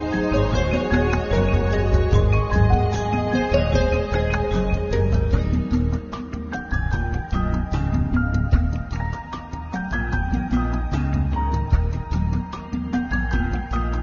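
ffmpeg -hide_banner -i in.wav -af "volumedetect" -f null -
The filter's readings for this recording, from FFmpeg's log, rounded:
mean_volume: -20.5 dB
max_volume: -4.5 dB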